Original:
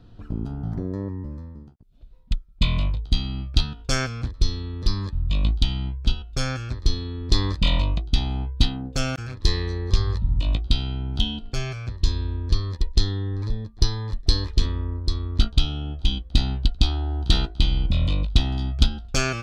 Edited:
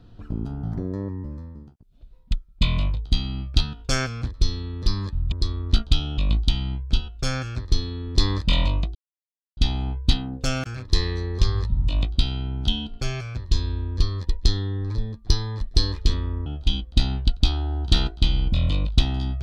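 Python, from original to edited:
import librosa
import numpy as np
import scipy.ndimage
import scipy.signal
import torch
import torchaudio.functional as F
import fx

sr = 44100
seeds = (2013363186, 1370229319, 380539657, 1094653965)

y = fx.edit(x, sr, fx.insert_silence(at_s=8.09, length_s=0.62),
    fx.move(start_s=14.98, length_s=0.86, to_s=5.32), tone=tone)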